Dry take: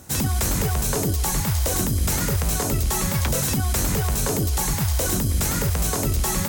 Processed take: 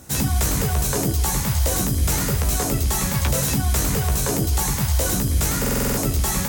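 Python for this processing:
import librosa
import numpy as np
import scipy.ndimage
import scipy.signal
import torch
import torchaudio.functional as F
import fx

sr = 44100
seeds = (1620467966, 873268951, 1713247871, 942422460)

y = fx.room_early_taps(x, sr, ms=(15, 77), db=(-6.0, -12.5))
y = fx.buffer_glitch(y, sr, at_s=(5.6,), block=2048, repeats=7)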